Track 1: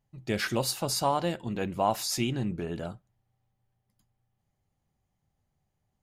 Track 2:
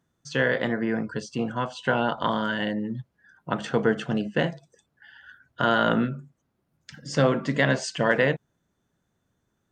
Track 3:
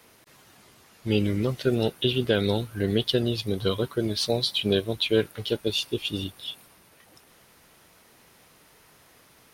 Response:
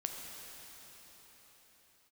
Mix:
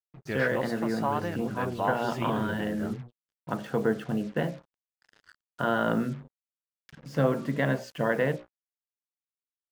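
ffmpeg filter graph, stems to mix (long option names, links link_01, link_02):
-filter_complex "[0:a]agate=range=-33dB:threshold=-48dB:ratio=3:detection=peak,equalizer=frequency=1600:width=1.1:gain=13,volume=-5dB,asplit=2[link_01][link_02];[1:a]bandreject=frequency=60:width_type=h:width=6,bandreject=frequency=120:width_type=h:width=6,bandreject=frequency=180:width_type=h:width=6,bandreject=frequency=240:width_type=h:width=6,bandreject=frequency=300:width_type=h:width=6,bandreject=frequency=360:width_type=h:width=6,bandreject=frequency=420:width_type=h:width=6,bandreject=frequency=480:width_type=h:width=6,bandreject=frequency=540:width_type=h:width=6,bandreject=frequency=600:width_type=h:width=6,volume=-2.5dB[link_03];[2:a]volume=-12.5dB[link_04];[link_02]apad=whole_len=420318[link_05];[link_04][link_05]sidechaingate=range=-33dB:threshold=-42dB:ratio=16:detection=peak[link_06];[link_01][link_03][link_06]amix=inputs=3:normalize=0,lowpass=frequency=1200:poles=1,acrusher=bits=7:mix=0:aa=0.5"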